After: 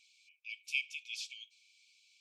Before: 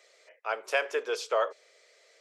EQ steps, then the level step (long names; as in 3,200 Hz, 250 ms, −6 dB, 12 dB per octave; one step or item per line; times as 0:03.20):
linear-phase brick-wall high-pass 2,200 Hz
spectral tilt −3.5 dB per octave
+4.5 dB